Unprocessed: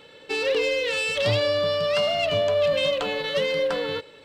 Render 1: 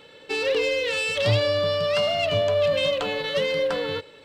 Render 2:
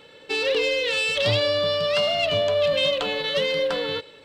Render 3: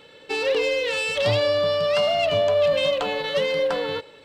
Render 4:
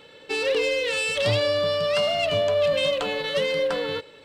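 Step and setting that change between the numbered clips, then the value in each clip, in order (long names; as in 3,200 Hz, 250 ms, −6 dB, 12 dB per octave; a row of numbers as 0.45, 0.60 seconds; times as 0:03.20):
dynamic equaliser, frequency: 100, 3,600, 800, 9,200 Hertz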